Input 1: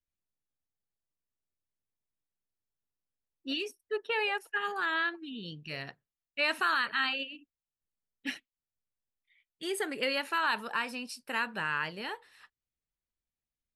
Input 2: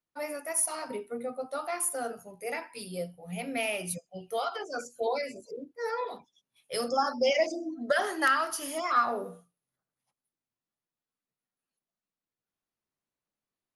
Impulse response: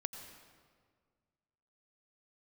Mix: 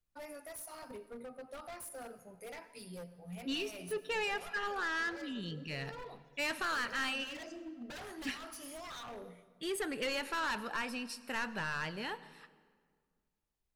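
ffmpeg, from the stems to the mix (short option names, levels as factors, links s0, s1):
-filter_complex "[0:a]asoftclip=type=tanh:threshold=0.0316,volume=0.596,asplit=3[s0][s1][s2];[s1]volume=0.562[s3];[1:a]acompressor=threshold=0.00316:ratio=1.5,aeval=exprs='0.015*(abs(mod(val(0)/0.015+3,4)-2)-1)':c=same,volume=0.376,asplit=2[s4][s5];[s5]volume=0.596[s6];[s2]apad=whole_len=606802[s7];[s4][s7]sidechaincompress=threshold=0.00178:ratio=8:attack=49:release=101[s8];[2:a]atrim=start_sample=2205[s9];[s3][s6]amix=inputs=2:normalize=0[s10];[s10][s9]afir=irnorm=-1:irlink=0[s11];[s0][s8][s11]amix=inputs=3:normalize=0,lowshelf=f=130:g=9.5"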